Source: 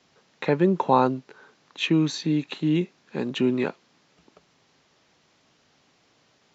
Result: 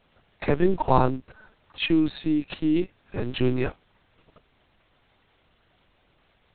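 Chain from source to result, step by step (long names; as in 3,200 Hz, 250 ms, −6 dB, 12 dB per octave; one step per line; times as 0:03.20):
one scale factor per block 5 bits
linear-prediction vocoder at 8 kHz pitch kept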